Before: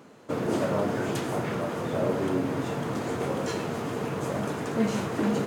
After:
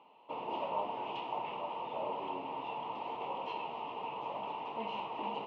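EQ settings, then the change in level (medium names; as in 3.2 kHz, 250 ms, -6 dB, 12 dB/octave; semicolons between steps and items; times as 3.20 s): two resonant band-passes 1.6 kHz, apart 1.6 oct; distance through air 300 m; band-stop 1.4 kHz, Q 19; +5.5 dB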